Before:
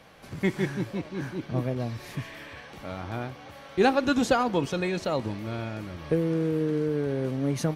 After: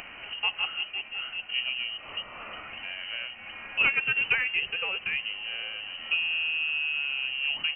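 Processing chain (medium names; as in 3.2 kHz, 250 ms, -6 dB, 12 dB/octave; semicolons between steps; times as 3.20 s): tracing distortion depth 0.12 ms; frequency inversion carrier 3 kHz; upward compressor, threshold -29 dBFS; trim -3 dB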